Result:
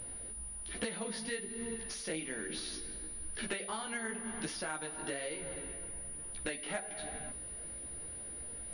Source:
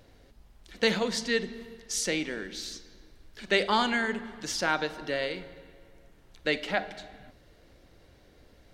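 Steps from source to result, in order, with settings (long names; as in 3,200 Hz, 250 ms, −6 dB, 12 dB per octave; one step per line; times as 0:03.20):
downward compressor 16 to 1, threshold −40 dBFS, peak gain reduction 22 dB
multi-voice chorus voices 2, 1.2 Hz, delay 16 ms, depth 3.3 ms
switching amplifier with a slow clock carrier 9,700 Hz
level +8 dB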